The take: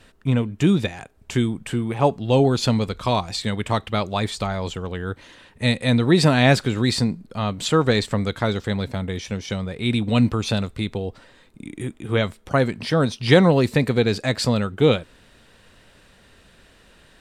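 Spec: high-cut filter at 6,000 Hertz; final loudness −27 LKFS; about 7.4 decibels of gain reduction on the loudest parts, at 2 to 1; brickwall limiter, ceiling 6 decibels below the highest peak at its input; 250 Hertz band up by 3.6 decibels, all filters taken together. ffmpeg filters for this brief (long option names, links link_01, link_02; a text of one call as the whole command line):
ffmpeg -i in.wav -af "lowpass=6000,equalizer=frequency=250:width_type=o:gain=4.5,acompressor=threshold=-22dB:ratio=2,volume=-1dB,alimiter=limit=-15.5dB:level=0:latency=1" out.wav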